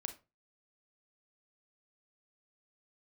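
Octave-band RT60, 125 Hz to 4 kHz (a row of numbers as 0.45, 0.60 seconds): 0.40, 0.30, 0.30, 0.25, 0.25, 0.20 seconds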